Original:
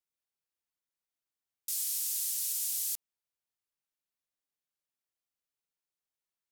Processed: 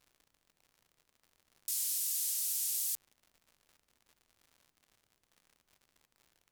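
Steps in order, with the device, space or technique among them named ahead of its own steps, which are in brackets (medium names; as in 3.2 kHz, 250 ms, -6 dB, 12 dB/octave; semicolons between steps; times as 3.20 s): vinyl LP (wow and flutter; crackle 120 per s -50 dBFS; pink noise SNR 41 dB); trim -1 dB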